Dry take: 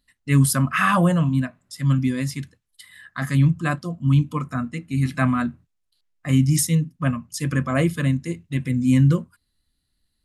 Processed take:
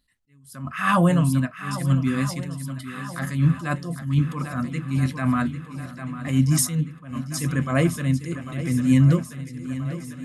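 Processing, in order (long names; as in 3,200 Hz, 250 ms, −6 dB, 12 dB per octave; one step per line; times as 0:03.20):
feedback echo with a long and a short gap by turns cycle 1,331 ms, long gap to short 1.5 to 1, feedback 50%, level −13 dB
level that may rise only so fast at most 110 dB per second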